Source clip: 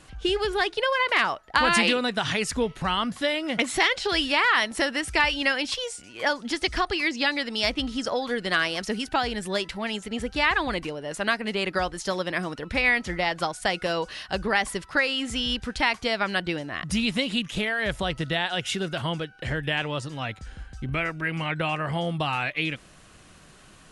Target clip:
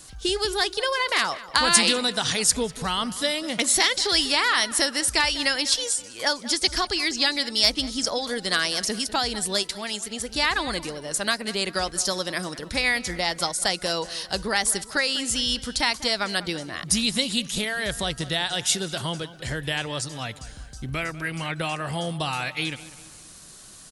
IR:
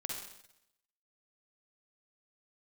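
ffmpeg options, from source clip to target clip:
-filter_complex "[0:a]asplit=2[link_01][link_02];[link_02]adelay=197,lowpass=frequency=3100:poles=1,volume=-16dB,asplit=2[link_03][link_04];[link_04]adelay=197,lowpass=frequency=3100:poles=1,volume=0.5,asplit=2[link_05][link_06];[link_06]adelay=197,lowpass=frequency=3100:poles=1,volume=0.5,asplit=2[link_07][link_08];[link_08]adelay=197,lowpass=frequency=3100:poles=1,volume=0.5[link_09];[link_01][link_03][link_05][link_07][link_09]amix=inputs=5:normalize=0,acrossover=split=920[link_10][link_11];[link_11]aexciter=amount=5.9:drive=1.9:freq=3800[link_12];[link_10][link_12]amix=inputs=2:normalize=0,asettb=1/sr,asplit=3[link_13][link_14][link_15];[link_13]atrim=end=9.634[link_16];[link_14]atrim=start=9.63:end=10.29,asetpts=PTS-STARTPTS,afade=type=in:duration=0.004:curve=qsin,afade=type=out:start_time=0.656:duration=0.004:curve=qsin,lowshelf=frequency=360:gain=-6[link_17];[link_15]atrim=start=10.286[link_18];[link_16][link_17]acrossfade=duration=0.004:curve1=hsin:curve2=qsin[link_19];[link_19][link_18]acrossfade=duration=0.004:curve1=qsin:curve2=hsin,volume=-1.5dB"

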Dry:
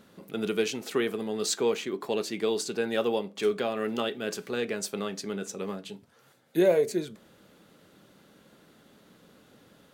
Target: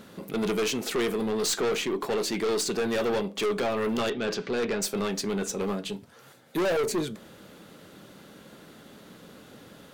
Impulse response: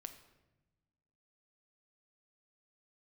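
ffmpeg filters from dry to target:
-filter_complex "[0:a]asettb=1/sr,asplit=3[link_01][link_02][link_03];[link_01]atrim=end=3.994[link_04];[link_02]atrim=start=3.99:end=4.82,asetpts=PTS-STARTPTS,afade=type=in:duration=0.004:curve=qsin,afade=type=out:start_time=0.826:duration=0.004:curve=qsin,lowpass=frequency=5300:width=0.5412,lowpass=frequency=5300:width=1.3066[link_05];[link_03]atrim=start=4.816[link_06];[link_04][link_05]acrossfade=duration=0.004:curve1=hsin:curve2=qsin[link_07];[link_07][link_06]acrossfade=duration=0.004:curve1=qsin:curve2=hsin,aeval=exprs='(tanh(39.8*val(0)+0.15)-tanh(0.15))/39.8':channel_layout=same,volume=8.5dB"

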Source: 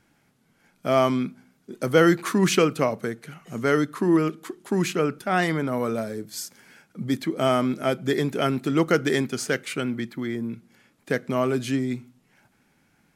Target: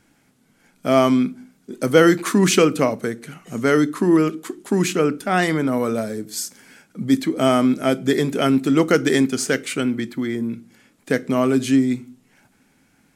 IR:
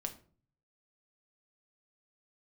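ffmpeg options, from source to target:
-filter_complex "[0:a]asplit=2[link_01][link_02];[link_02]equalizer=frequency=125:width_type=o:width=1:gain=-11,equalizer=frequency=250:width_type=o:width=1:gain=8,equalizer=frequency=1000:width_type=o:width=1:gain=-11,equalizer=frequency=8000:width_type=o:width=1:gain=10[link_03];[1:a]atrim=start_sample=2205,asetrate=57330,aresample=44100[link_04];[link_03][link_04]afir=irnorm=-1:irlink=0,volume=-5dB[link_05];[link_01][link_05]amix=inputs=2:normalize=0,volume=2dB"

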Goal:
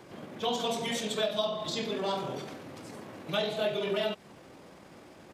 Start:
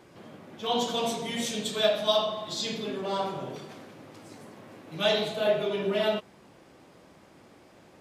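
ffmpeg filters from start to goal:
ffmpeg -i in.wav -filter_complex "[0:a]atempo=1.5,acrossover=split=420|2100[link_01][link_02][link_03];[link_01]acompressor=threshold=-40dB:ratio=4[link_04];[link_02]acompressor=threshold=-35dB:ratio=4[link_05];[link_03]acompressor=threshold=-40dB:ratio=4[link_06];[link_04][link_05][link_06]amix=inputs=3:normalize=0,volume=3.5dB" out.wav

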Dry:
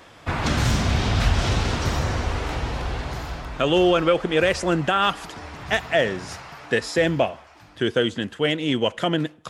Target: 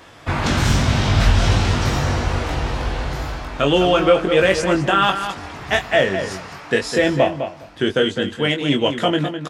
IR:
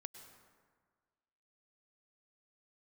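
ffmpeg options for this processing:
-filter_complex "[0:a]asplit=2[link_01][link_02];[link_02]adelay=21,volume=-5dB[link_03];[link_01][link_03]amix=inputs=2:normalize=0,asplit=2[link_04][link_05];[link_05]adelay=206,lowpass=frequency=3700:poles=1,volume=-8.5dB,asplit=2[link_06][link_07];[link_07]adelay=206,lowpass=frequency=3700:poles=1,volume=0.15[link_08];[link_04][link_06][link_08]amix=inputs=3:normalize=0,volume=2.5dB"

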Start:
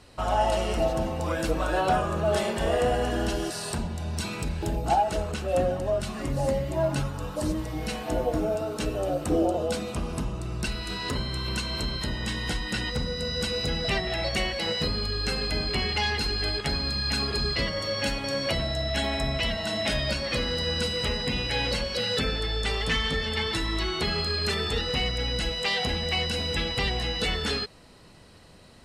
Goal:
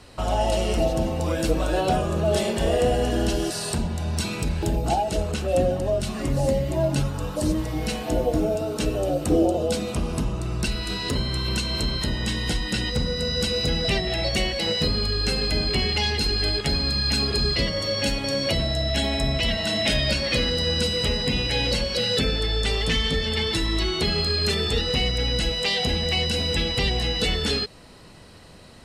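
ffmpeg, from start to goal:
ffmpeg -i in.wav -filter_complex "[0:a]asettb=1/sr,asplit=3[link_01][link_02][link_03];[link_01]atrim=end=19.484[link_04];[link_02]atrim=start=19.48:end=20.5,asetpts=PTS-STARTPTS,afade=type=in:duration=0.004:curve=qsin,afade=type=out:start_time=1.016:duration=0.004:curve=qsin,equalizer=frequency=1900:width_type=o:width=1.8:gain=4.5[link_05];[link_03]atrim=start=20.496[link_06];[link_04][link_05]acrossfade=duration=0.004:curve1=hsin:curve2=qsin[link_07];[link_07][link_06]acrossfade=duration=0.004:curve1=qsin:curve2=hsin,acrossover=split=710|2200[link_08][link_09][link_10];[link_09]acompressor=threshold=-45dB:ratio=6[link_11];[link_08][link_11][link_10]amix=inputs=3:normalize=0,volume=5dB" out.wav

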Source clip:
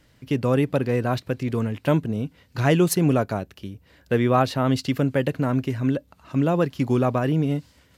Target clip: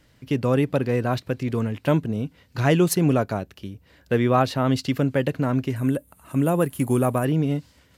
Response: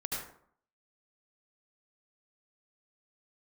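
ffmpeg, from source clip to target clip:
-filter_complex "[0:a]asettb=1/sr,asplit=3[link_01][link_02][link_03];[link_01]atrim=end=5.764[link_04];[link_02]atrim=start=5.76:end=7.25,asetpts=PTS-STARTPTS,afade=type=in:duration=0.004:curve=qsin,afade=type=out:start_time=1.486:duration=0.004:curve=qsin,highshelf=frequency=7200:width_type=q:width=3:gain=13[link_05];[link_03]atrim=start=7.246[link_06];[link_04][link_05]acrossfade=duration=0.004:curve1=hsin:curve2=qsin[link_07];[link_07][link_06]acrossfade=duration=0.004:curve1=qsin:curve2=hsin"

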